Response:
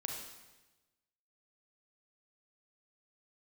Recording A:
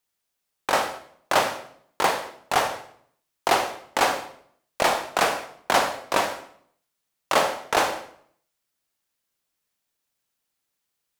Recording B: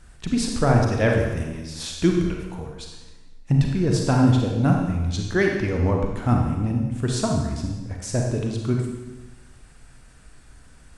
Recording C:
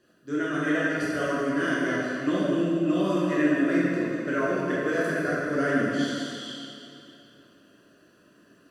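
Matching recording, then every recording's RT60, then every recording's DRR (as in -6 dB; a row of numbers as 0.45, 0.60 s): B; 0.60, 1.1, 2.8 s; 8.0, 0.5, -8.5 dB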